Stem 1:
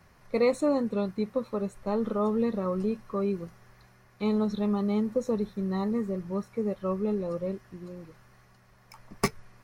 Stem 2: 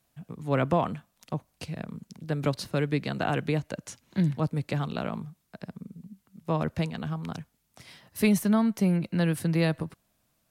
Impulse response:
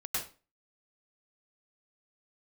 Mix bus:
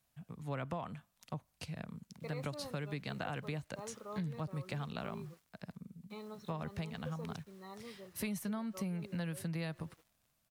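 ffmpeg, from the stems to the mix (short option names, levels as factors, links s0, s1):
-filter_complex "[0:a]highpass=f=830:p=1,acrusher=bits=8:mix=0:aa=0.000001,adelay=1900,volume=0.237[s0];[1:a]equalizer=f=350:w=1:g=-6.5,volume=0.531,asplit=2[s1][s2];[s2]apad=whole_len=508735[s3];[s0][s3]sidechaincompress=threshold=0.0251:ratio=8:attack=16:release=100[s4];[s4][s1]amix=inputs=2:normalize=0,acompressor=threshold=0.0158:ratio=5"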